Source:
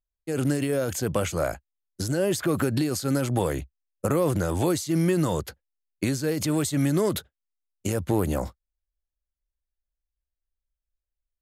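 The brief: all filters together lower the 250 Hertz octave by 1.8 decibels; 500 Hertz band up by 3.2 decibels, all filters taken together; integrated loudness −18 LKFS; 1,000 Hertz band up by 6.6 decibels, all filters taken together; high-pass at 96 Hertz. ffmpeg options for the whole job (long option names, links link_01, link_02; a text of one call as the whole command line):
ffmpeg -i in.wav -af "highpass=96,equalizer=frequency=250:width_type=o:gain=-4.5,equalizer=frequency=500:width_type=o:gain=3.5,equalizer=frequency=1000:width_type=o:gain=7.5,volume=7dB" out.wav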